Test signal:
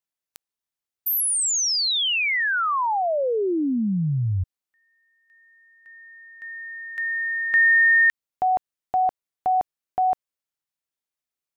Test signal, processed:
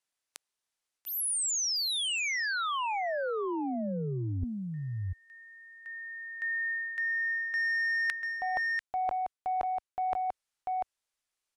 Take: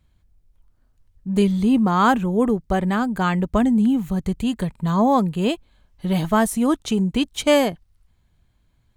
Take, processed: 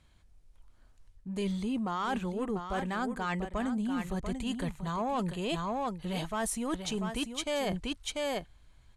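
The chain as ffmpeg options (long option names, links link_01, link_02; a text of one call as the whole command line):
ffmpeg -i in.wav -filter_complex "[0:a]asplit=2[link_01][link_02];[link_02]alimiter=limit=-13.5dB:level=0:latency=1,volume=-1dB[link_03];[link_01][link_03]amix=inputs=2:normalize=0,lowshelf=frequency=320:gain=-9,acontrast=82,asubboost=boost=3:cutoff=88,lowpass=frequency=11000:width=0.5412,lowpass=frequency=11000:width=1.3066,aecho=1:1:692:0.316,areverse,acompressor=threshold=-22dB:ratio=8:attack=9.8:release=559:knee=1:detection=peak,areverse,volume=-7.5dB" out.wav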